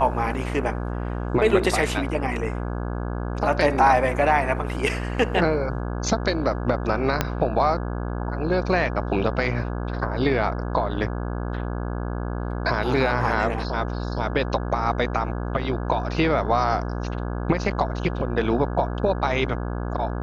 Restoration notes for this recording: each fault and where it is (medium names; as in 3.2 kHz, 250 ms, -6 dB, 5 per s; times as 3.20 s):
buzz 60 Hz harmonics 28 -28 dBFS
7.21 s: pop -5 dBFS
12.98 s: dropout 2.1 ms